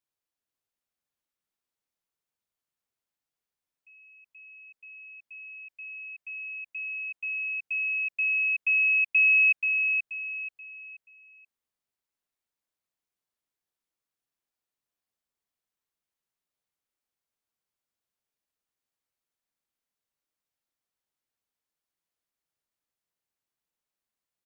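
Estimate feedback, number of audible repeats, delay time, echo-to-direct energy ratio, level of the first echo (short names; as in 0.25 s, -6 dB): 34%, 4, 0.481 s, -4.5 dB, -5.0 dB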